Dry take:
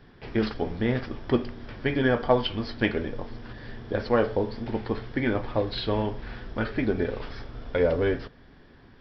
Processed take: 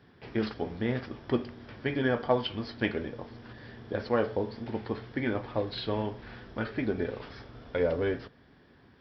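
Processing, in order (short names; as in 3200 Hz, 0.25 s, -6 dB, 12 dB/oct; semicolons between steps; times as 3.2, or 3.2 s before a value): HPF 74 Hz 12 dB/oct; gain -4.5 dB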